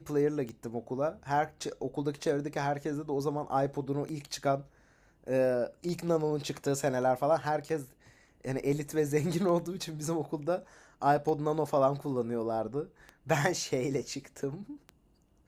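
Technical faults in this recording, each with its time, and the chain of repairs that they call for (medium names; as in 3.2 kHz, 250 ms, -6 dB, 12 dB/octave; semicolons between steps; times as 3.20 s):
tick 33 1/3 rpm -28 dBFS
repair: de-click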